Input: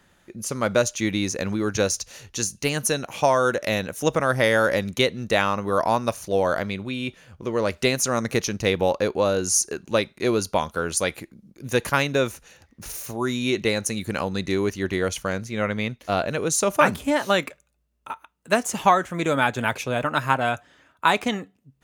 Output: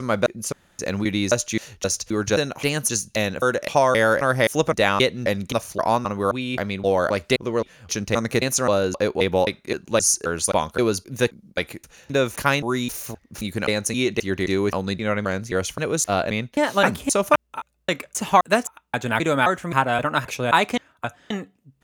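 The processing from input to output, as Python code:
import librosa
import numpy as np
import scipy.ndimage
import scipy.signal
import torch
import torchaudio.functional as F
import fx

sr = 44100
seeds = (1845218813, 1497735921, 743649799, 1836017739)

y = fx.block_reorder(x, sr, ms=263.0, group=3)
y = F.gain(torch.from_numpy(y), 1.5).numpy()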